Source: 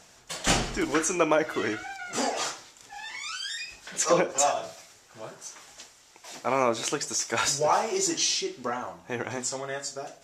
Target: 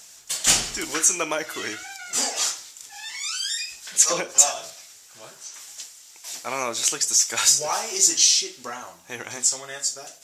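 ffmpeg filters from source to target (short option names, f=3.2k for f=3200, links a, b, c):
-filter_complex "[0:a]asettb=1/sr,asplit=3[a][b][c];[a]atrim=end=4.704[d];[b]atrim=start=4.7:end=5.54,asetpts=PTS-STARTPTS,afade=t=in:d=0.004:c=qsin,afade=t=out:st=0.836:d=0.004:c=qsin,acrossover=split=5100[e][f];[f]acompressor=threshold=-57dB:ratio=4:attack=1:release=60[g];[e][g]amix=inputs=2:normalize=0[h];[c]atrim=start=5.536[i];[d][h]acrossfade=d=0.004:c1=hsin:c2=qsin[j];[j][i]acrossfade=d=0.004:c1=qsin:c2=hsin,crystalizer=i=8:c=0,volume=-7dB"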